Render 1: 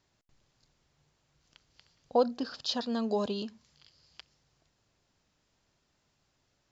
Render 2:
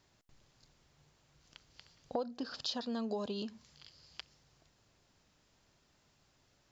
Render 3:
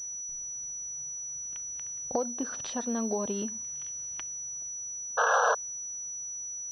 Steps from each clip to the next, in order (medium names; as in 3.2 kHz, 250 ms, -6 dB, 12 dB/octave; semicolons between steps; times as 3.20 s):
compression 4:1, threshold -40 dBFS, peak gain reduction 16.5 dB; trim +3.5 dB
painted sound noise, 5.17–5.55 s, 440–1700 Hz -30 dBFS; class-D stage that switches slowly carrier 5.9 kHz; trim +6 dB